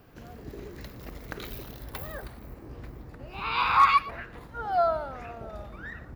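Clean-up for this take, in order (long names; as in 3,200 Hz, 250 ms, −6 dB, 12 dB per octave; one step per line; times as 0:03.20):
clipped peaks rebuilt −11 dBFS
echo removal 117 ms −18.5 dB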